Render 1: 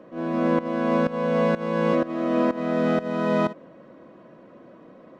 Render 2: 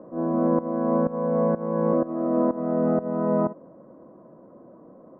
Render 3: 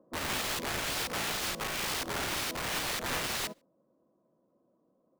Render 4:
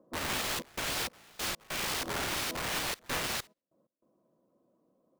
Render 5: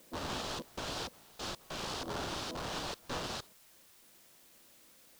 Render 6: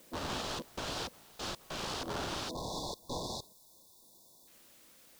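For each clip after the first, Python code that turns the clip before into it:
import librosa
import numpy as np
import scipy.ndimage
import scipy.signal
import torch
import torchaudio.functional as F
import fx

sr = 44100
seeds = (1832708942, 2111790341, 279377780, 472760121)

y1 = scipy.signal.sosfilt(scipy.signal.butter(4, 1100.0, 'lowpass', fs=sr, output='sos'), x)
y1 = fx.rider(y1, sr, range_db=10, speed_s=0.5)
y2 = (np.mod(10.0 ** (27.5 / 20.0) * y1 + 1.0, 2.0) - 1.0) / 10.0 ** (27.5 / 20.0)
y2 = y2 + 10.0 ** (-18.0 / 20.0) * np.pad(y2, (int(143 * sr / 1000.0), 0))[:len(y2)]
y2 = fx.upward_expand(y2, sr, threshold_db=-47.0, expansion=2.5)
y3 = fx.step_gate(y2, sr, bpm=97, pattern='xxxx.xx..x.xxxx', floor_db=-24.0, edge_ms=4.5)
y4 = scipy.signal.sosfilt(scipy.signal.butter(2, 5100.0, 'lowpass', fs=sr, output='sos'), y3)
y4 = fx.peak_eq(y4, sr, hz=2100.0, db=-12.0, octaves=0.81)
y4 = fx.quant_dither(y4, sr, seeds[0], bits=10, dither='triangular')
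y4 = y4 * librosa.db_to_amplitude(-1.5)
y5 = fx.spec_erase(y4, sr, start_s=2.49, length_s=1.99, low_hz=1100.0, high_hz=3400.0)
y5 = y5 * librosa.db_to_amplitude(1.0)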